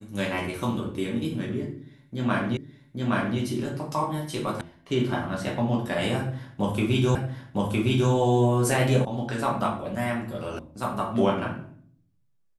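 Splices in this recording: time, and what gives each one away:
2.57 repeat of the last 0.82 s
4.61 sound cut off
7.15 repeat of the last 0.96 s
9.05 sound cut off
10.59 sound cut off

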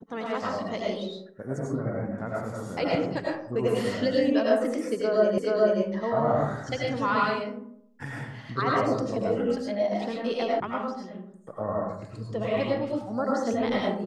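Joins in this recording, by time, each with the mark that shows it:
5.38 repeat of the last 0.43 s
10.6 sound cut off

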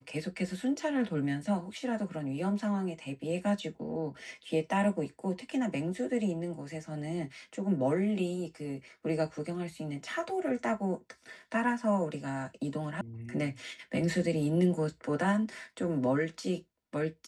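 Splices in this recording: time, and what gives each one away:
13.01 sound cut off

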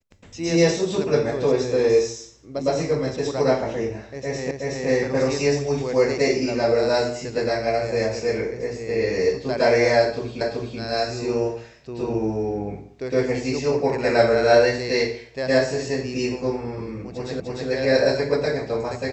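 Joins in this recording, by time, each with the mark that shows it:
4.51 repeat of the last 0.37 s
10.41 repeat of the last 0.38 s
17.4 repeat of the last 0.3 s

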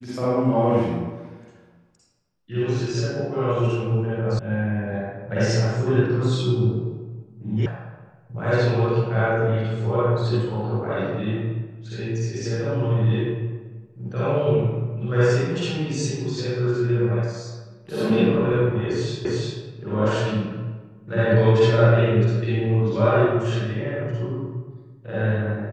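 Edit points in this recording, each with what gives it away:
4.39 sound cut off
7.66 sound cut off
19.25 repeat of the last 0.35 s

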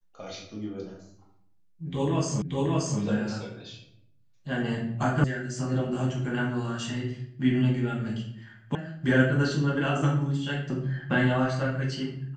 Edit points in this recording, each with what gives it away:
2.42 repeat of the last 0.58 s
5.24 sound cut off
8.75 sound cut off

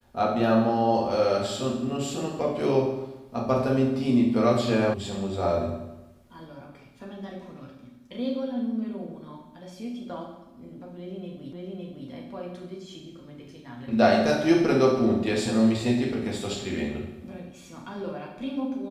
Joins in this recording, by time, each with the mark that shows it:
4.94 sound cut off
11.53 repeat of the last 0.56 s

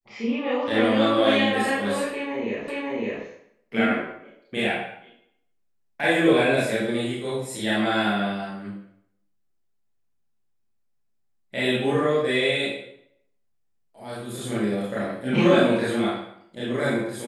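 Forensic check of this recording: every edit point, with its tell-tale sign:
2.68 repeat of the last 0.56 s

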